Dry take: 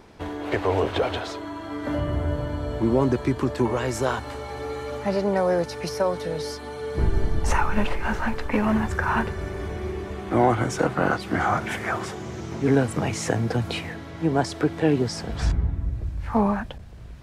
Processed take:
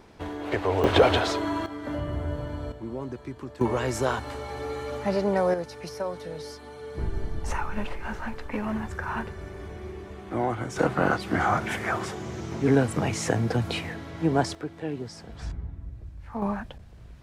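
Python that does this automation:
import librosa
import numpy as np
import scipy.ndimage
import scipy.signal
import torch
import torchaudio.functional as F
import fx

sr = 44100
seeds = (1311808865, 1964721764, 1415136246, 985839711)

y = fx.gain(x, sr, db=fx.steps((0.0, -2.5), (0.84, 6.0), (1.66, -5.0), (2.72, -14.0), (3.61, -1.5), (5.54, -8.0), (10.76, -1.0), (14.55, -12.0), (16.42, -5.5)))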